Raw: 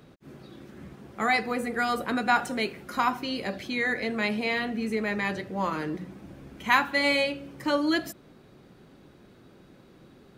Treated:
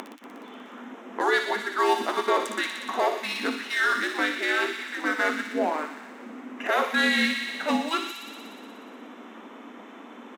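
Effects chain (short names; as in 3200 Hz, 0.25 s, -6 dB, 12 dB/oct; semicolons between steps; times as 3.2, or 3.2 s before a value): Wiener smoothing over 9 samples; in parallel at -2 dB: compressor, threshold -39 dBFS, peak gain reduction 21 dB; on the sum: limiter -19 dBFS, peak gain reduction 11.5 dB; upward compressor, threshold -32 dBFS; frequency shift -320 Hz; on a send: thin delay 60 ms, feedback 82%, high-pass 2400 Hz, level -4.5 dB; on the sum: harmoniser -3 st -8 dB; brick-wall FIR high-pass 220 Hz; gain +5.5 dB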